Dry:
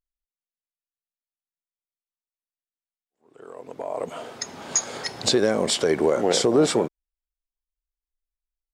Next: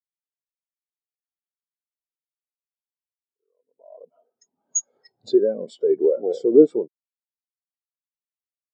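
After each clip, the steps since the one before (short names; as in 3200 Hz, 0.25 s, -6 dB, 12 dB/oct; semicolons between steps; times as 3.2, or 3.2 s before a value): spectral expander 2.5:1; gain +7.5 dB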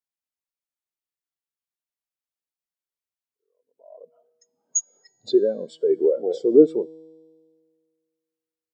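dynamic EQ 3700 Hz, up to +6 dB, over -46 dBFS, Q 1.4; resonator 160 Hz, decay 1.9 s, mix 50%; gain +5 dB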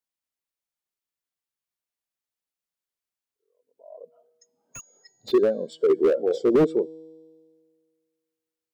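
slew limiter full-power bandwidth 63 Hz; gain +1.5 dB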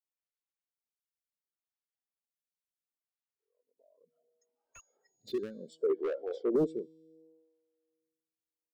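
photocell phaser 0.69 Hz; gain -9 dB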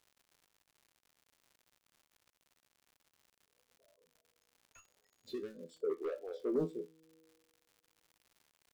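resonator 84 Hz, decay 0.17 s, harmonics all, mix 90%; crackle 150/s -55 dBFS; gain +1 dB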